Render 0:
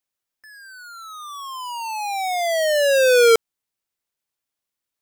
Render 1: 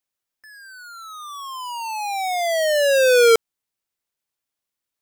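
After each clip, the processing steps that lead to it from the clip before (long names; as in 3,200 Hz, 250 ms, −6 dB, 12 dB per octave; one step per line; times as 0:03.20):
no processing that can be heard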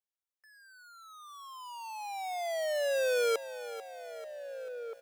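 four-pole ladder high-pass 420 Hz, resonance 30%
slap from a distant wall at 270 metres, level −11 dB
feedback echo at a low word length 442 ms, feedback 55%, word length 8 bits, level −13.5 dB
level −9 dB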